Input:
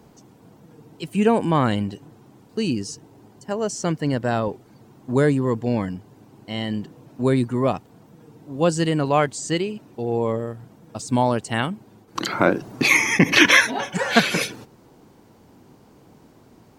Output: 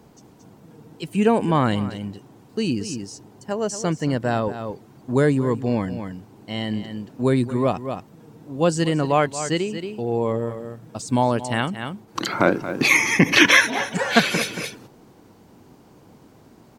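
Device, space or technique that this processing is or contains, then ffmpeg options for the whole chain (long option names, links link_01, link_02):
ducked delay: -filter_complex "[0:a]asplit=3[link_01][link_02][link_03];[link_02]adelay=227,volume=-5dB[link_04];[link_03]apad=whole_len=750414[link_05];[link_04][link_05]sidechaincompress=threshold=-33dB:ratio=5:attack=44:release=220[link_06];[link_01][link_06]amix=inputs=2:normalize=0"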